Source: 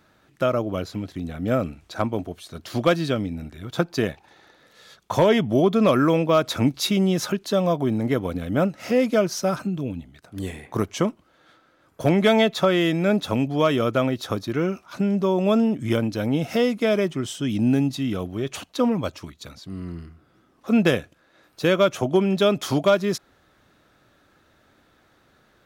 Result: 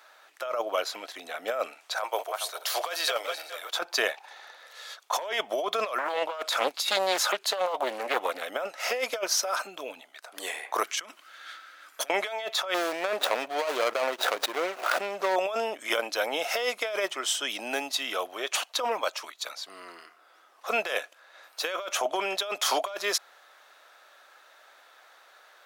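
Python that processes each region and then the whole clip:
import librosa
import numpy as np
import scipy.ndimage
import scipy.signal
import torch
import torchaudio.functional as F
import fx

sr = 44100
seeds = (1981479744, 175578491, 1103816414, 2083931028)

y = fx.chain(x, sr, fx.reverse_delay_fb(ms=207, feedback_pct=43, wet_db=-13.0),
    fx.highpass(hz=410.0, slope=24),
    fx.high_shelf(hz=9100.0, db=10.5), at=(1.97, 3.7))
y = fx.chain(y, sr, fx.highpass(hz=59.0, slope=12),
    fx.notch(hz=5800.0, q=12.0),
    fx.doppler_dist(depth_ms=0.65), at=(5.98, 8.43))
y = fx.chain(y, sr, fx.over_compress(threshold_db=-32.0, ratio=-1.0),
    fx.band_shelf(hz=650.0, db=-11.5, octaves=1.7), at=(10.83, 12.1))
y = fx.chain(y, sr, fx.median_filter(points=41),
    fx.notch(hz=840.0, q=24.0),
    fx.pre_swell(db_per_s=73.0), at=(12.74, 15.36))
y = scipy.signal.sosfilt(scipy.signal.butter(4, 610.0, 'highpass', fs=sr, output='sos'), y)
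y = fx.over_compress(y, sr, threshold_db=-31.0, ratio=-1.0)
y = y * 10.0 ** (3.0 / 20.0)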